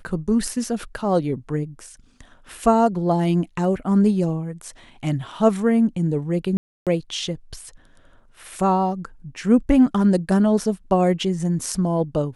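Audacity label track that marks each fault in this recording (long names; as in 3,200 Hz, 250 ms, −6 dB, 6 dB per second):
6.570000	6.870000	drop-out 297 ms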